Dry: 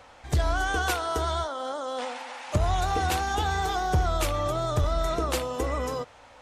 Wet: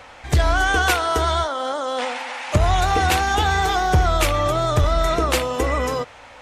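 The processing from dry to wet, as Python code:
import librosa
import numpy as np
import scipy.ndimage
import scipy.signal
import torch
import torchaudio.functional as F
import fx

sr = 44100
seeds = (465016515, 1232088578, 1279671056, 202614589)

y = fx.peak_eq(x, sr, hz=2200.0, db=5.0, octaves=1.1)
y = y * librosa.db_to_amplitude(7.0)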